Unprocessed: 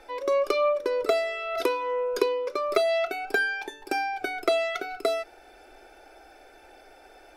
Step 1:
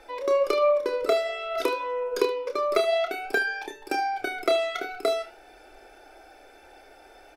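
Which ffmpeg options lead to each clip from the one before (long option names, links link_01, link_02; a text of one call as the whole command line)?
ffmpeg -i in.wav -filter_complex "[0:a]flanger=delay=5.9:depth=5.5:regen=-88:speed=0.53:shape=triangular,asplit=2[link_01][link_02];[link_02]aecho=0:1:29|75:0.398|0.158[link_03];[link_01][link_03]amix=inputs=2:normalize=0,volume=4.5dB" out.wav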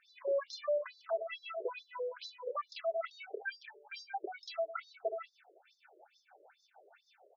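ffmpeg -i in.wav -filter_complex "[0:a]acrossover=split=480[link_01][link_02];[link_01]aeval=exprs='val(0)*(1-0.7/2+0.7/2*cos(2*PI*6.4*n/s))':channel_layout=same[link_03];[link_02]aeval=exprs='val(0)*(1-0.7/2-0.7/2*cos(2*PI*6.4*n/s))':channel_layout=same[link_04];[link_03][link_04]amix=inputs=2:normalize=0,volume=24.5dB,asoftclip=hard,volume=-24.5dB,afftfilt=real='re*between(b*sr/1024,440*pow(5100/440,0.5+0.5*sin(2*PI*2.3*pts/sr))/1.41,440*pow(5100/440,0.5+0.5*sin(2*PI*2.3*pts/sr))*1.41)':imag='im*between(b*sr/1024,440*pow(5100/440,0.5+0.5*sin(2*PI*2.3*pts/sr))/1.41,440*pow(5100/440,0.5+0.5*sin(2*PI*2.3*pts/sr))*1.41)':win_size=1024:overlap=0.75,volume=-3dB" out.wav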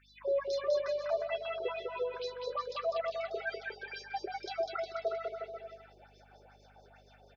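ffmpeg -i in.wav -af "aeval=exprs='val(0)+0.000355*(sin(2*PI*50*n/s)+sin(2*PI*2*50*n/s)/2+sin(2*PI*3*50*n/s)/3+sin(2*PI*4*50*n/s)/4+sin(2*PI*5*50*n/s)/5)':channel_layout=same,aecho=1:1:200|360|488|590.4|672.3:0.631|0.398|0.251|0.158|0.1,volume=1.5dB" out.wav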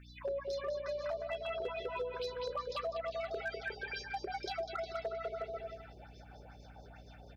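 ffmpeg -i in.wav -af "acompressor=threshold=-37dB:ratio=20,aeval=exprs='val(0)+0.00141*(sin(2*PI*60*n/s)+sin(2*PI*2*60*n/s)/2+sin(2*PI*3*60*n/s)/3+sin(2*PI*4*60*n/s)/4+sin(2*PI*5*60*n/s)/5)':channel_layout=same,asoftclip=type=hard:threshold=-33.5dB,volume=2.5dB" out.wav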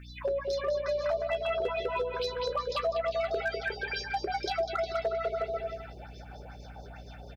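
ffmpeg -i in.wav -filter_complex "[0:a]asplit=2[link_01][link_02];[link_02]adelay=15,volume=-14dB[link_03];[link_01][link_03]amix=inputs=2:normalize=0,volume=7.5dB" out.wav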